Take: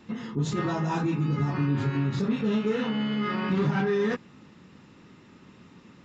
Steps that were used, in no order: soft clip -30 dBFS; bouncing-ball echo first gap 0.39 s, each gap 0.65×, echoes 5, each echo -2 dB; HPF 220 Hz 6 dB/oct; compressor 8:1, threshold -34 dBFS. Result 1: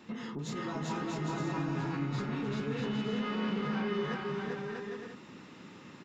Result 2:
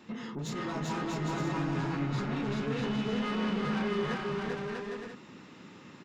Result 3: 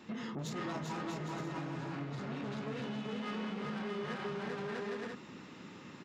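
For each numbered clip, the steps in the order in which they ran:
HPF > compressor > soft clip > bouncing-ball echo; HPF > soft clip > compressor > bouncing-ball echo; soft clip > bouncing-ball echo > compressor > HPF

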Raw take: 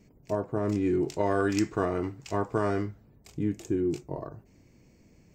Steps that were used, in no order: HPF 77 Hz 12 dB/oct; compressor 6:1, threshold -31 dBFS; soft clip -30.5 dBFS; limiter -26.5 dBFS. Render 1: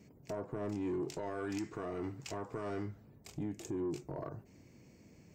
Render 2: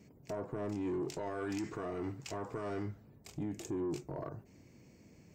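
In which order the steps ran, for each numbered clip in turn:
compressor > limiter > HPF > soft clip; limiter > HPF > soft clip > compressor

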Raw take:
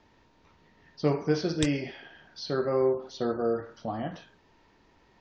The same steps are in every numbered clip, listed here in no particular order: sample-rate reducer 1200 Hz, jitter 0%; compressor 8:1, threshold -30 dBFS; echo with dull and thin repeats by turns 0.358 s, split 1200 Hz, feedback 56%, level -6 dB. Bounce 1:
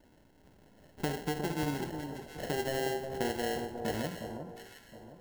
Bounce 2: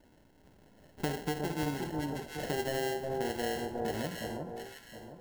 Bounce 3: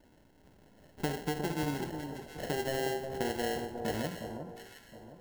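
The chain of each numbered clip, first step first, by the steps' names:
sample-rate reducer > compressor > echo with dull and thin repeats by turns; sample-rate reducer > echo with dull and thin repeats by turns > compressor; compressor > sample-rate reducer > echo with dull and thin repeats by turns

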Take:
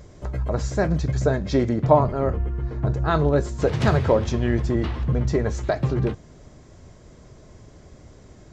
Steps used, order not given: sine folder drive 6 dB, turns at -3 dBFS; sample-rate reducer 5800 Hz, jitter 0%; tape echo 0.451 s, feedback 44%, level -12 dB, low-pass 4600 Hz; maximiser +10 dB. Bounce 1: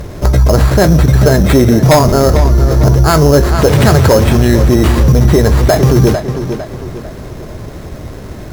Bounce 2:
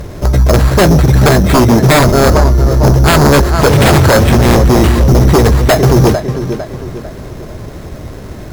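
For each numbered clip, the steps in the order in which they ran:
sample-rate reducer > sine folder > tape echo > maximiser; sample-rate reducer > tape echo > maximiser > sine folder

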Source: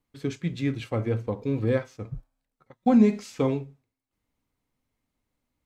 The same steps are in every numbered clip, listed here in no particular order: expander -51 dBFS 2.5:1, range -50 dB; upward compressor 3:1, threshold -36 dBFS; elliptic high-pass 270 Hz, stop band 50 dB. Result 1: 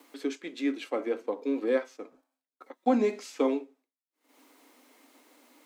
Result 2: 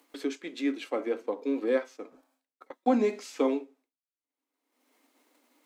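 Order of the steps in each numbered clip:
upward compressor > expander > elliptic high-pass; expander > elliptic high-pass > upward compressor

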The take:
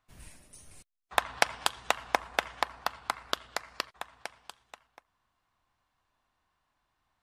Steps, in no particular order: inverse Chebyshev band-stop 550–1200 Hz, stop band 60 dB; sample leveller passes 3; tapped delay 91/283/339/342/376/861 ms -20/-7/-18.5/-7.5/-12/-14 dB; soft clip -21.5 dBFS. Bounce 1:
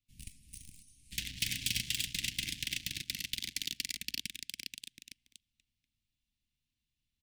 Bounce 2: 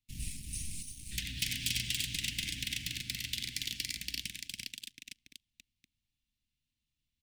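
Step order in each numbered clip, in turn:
tapped delay > sample leveller > soft clip > inverse Chebyshev band-stop; tapped delay > soft clip > sample leveller > inverse Chebyshev band-stop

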